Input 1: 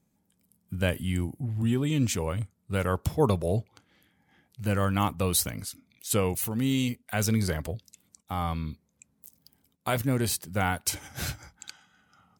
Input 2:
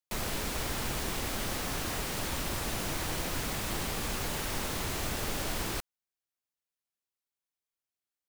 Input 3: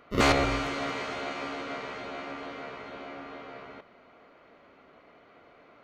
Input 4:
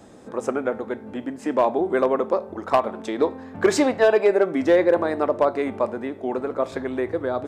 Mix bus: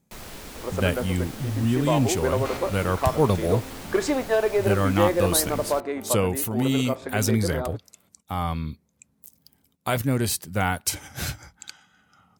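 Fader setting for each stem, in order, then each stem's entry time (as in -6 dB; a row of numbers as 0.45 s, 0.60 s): +3.0 dB, -6.0 dB, -12.5 dB, -5.0 dB; 0.00 s, 0.00 s, 2.25 s, 0.30 s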